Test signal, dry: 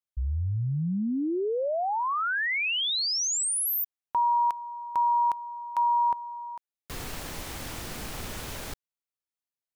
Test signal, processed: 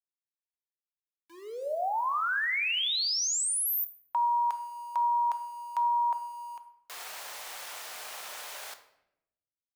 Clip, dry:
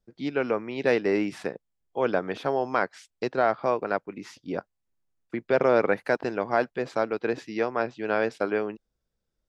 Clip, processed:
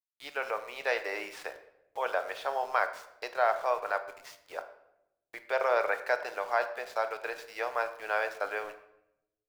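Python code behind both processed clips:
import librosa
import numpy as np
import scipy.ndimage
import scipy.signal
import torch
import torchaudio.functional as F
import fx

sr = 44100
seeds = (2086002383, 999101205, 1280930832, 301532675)

y = scipy.signal.sosfilt(scipy.signal.butter(4, 610.0, 'highpass', fs=sr, output='sos'), x)
y = np.where(np.abs(y) >= 10.0 ** (-46.5 / 20.0), y, 0.0)
y = fx.room_shoebox(y, sr, seeds[0], volume_m3=250.0, walls='mixed', distance_m=0.43)
y = y * librosa.db_to_amplitude(-2.0)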